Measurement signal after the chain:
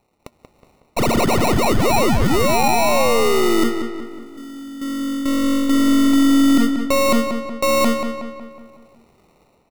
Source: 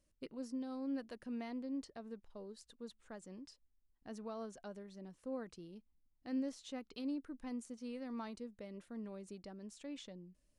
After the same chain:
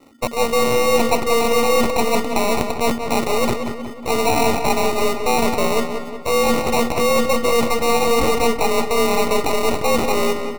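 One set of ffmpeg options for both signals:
ffmpeg -i in.wav -filter_complex "[0:a]aeval=exprs='if(lt(val(0),0),0.447*val(0),val(0))':channel_layout=same,dynaudnorm=framelen=160:gausssize=5:maxgain=10.5dB,afreqshift=230,apsyclip=30.5dB,acrusher=samples=27:mix=1:aa=0.000001,aeval=exprs='1.06*(cos(1*acos(clip(val(0)/1.06,-1,1)))-cos(1*PI/2))+0.0668*(cos(4*acos(clip(val(0)/1.06,-1,1)))-cos(4*PI/2))+0.106*(cos(8*acos(clip(val(0)/1.06,-1,1)))-cos(8*PI/2))':channel_layout=same,areverse,acompressor=threshold=-17dB:ratio=5,areverse,asplit=2[link_01][link_02];[link_02]adelay=184,lowpass=frequency=3600:poles=1,volume=-7dB,asplit=2[link_03][link_04];[link_04]adelay=184,lowpass=frequency=3600:poles=1,volume=0.52,asplit=2[link_05][link_06];[link_06]adelay=184,lowpass=frequency=3600:poles=1,volume=0.52,asplit=2[link_07][link_08];[link_08]adelay=184,lowpass=frequency=3600:poles=1,volume=0.52,asplit=2[link_09][link_10];[link_10]adelay=184,lowpass=frequency=3600:poles=1,volume=0.52,asplit=2[link_11][link_12];[link_12]adelay=184,lowpass=frequency=3600:poles=1,volume=0.52[link_13];[link_01][link_03][link_05][link_07][link_09][link_11][link_13]amix=inputs=7:normalize=0,volume=1dB" out.wav

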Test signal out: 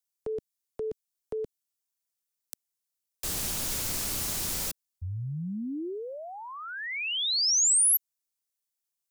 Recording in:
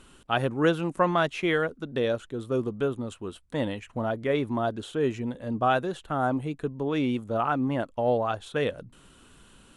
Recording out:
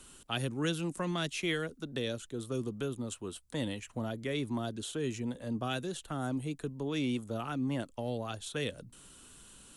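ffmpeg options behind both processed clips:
ffmpeg -i in.wav -filter_complex "[0:a]bass=frequency=250:gain=0,treble=frequency=4000:gain=12,acrossover=split=250|380|1900[link_01][link_02][link_03][link_04];[link_02]alimiter=level_in=7.5dB:limit=-24dB:level=0:latency=1,volume=-7.5dB[link_05];[link_03]acompressor=threshold=-39dB:ratio=4[link_06];[link_01][link_05][link_06][link_04]amix=inputs=4:normalize=0,volume=-4.5dB" out.wav

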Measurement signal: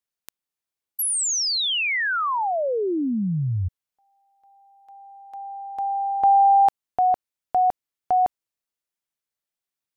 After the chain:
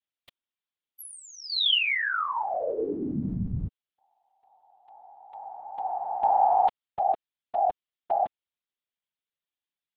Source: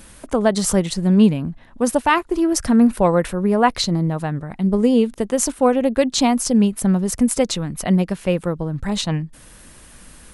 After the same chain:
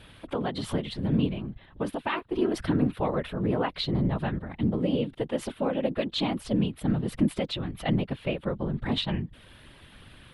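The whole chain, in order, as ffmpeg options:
ffmpeg -i in.wav -af "highshelf=frequency=4700:width_type=q:width=3:gain=-11.5,alimiter=limit=-11.5dB:level=0:latency=1:release=363,afftfilt=real='hypot(re,im)*cos(2*PI*random(0))':imag='hypot(re,im)*sin(2*PI*random(1))':win_size=512:overlap=0.75" out.wav

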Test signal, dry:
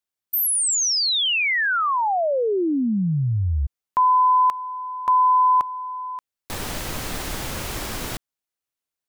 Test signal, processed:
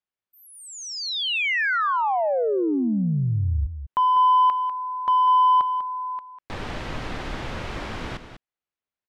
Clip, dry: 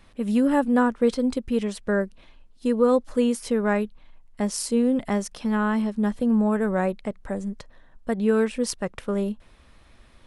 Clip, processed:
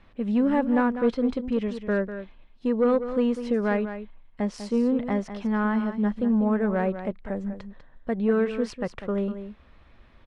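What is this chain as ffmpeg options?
ffmpeg -i in.wav -filter_complex "[0:a]lowpass=3000,asoftclip=type=tanh:threshold=-12dB,asplit=2[link_01][link_02];[link_02]aecho=0:1:197:0.299[link_03];[link_01][link_03]amix=inputs=2:normalize=0,volume=-1dB" out.wav

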